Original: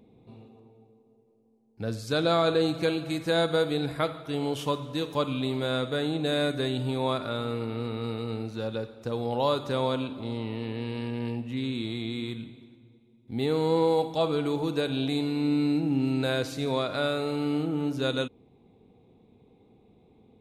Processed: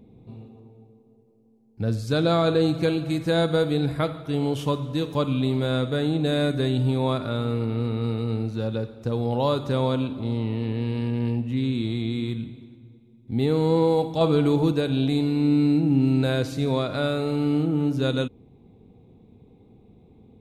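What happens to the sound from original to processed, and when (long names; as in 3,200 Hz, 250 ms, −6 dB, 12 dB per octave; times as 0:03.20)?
0:14.21–0:14.72: clip gain +3 dB
whole clip: low-shelf EQ 270 Hz +11 dB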